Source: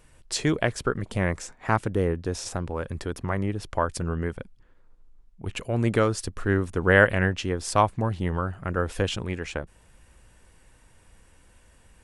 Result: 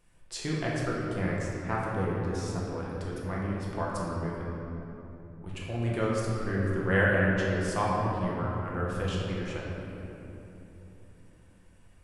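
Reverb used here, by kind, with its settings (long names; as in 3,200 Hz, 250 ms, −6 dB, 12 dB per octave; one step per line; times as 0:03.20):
rectangular room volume 190 cubic metres, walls hard, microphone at 0.82 metres
level −11.5 dB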